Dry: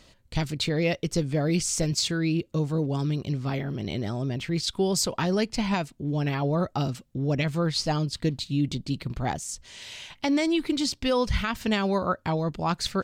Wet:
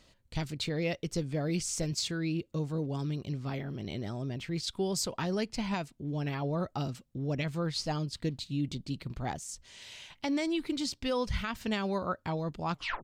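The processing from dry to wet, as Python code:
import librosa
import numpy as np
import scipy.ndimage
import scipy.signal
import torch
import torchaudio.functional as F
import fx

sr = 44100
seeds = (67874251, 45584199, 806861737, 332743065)

y = fx.tape_stop_end(x, sr, length_s=0.31)
y = y * librosa.db_to_amplitude(-7.0)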